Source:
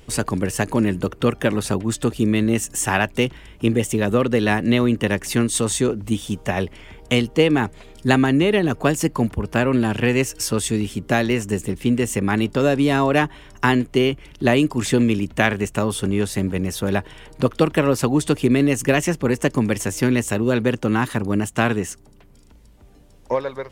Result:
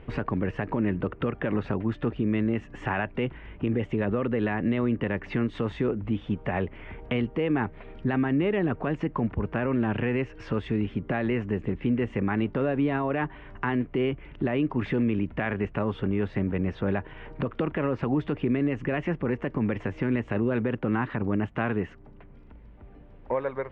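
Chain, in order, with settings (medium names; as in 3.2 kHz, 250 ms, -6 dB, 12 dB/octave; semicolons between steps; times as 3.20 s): low-pass 2.4 kHz 24 dB/octave; in parallel at 0 dB: compression, threshold -31 dBFS, peak gain reduction 18.5 dB; on the sum: peak limiter -12 dBFS, peak gain reduction 11 dB; trim -5 dB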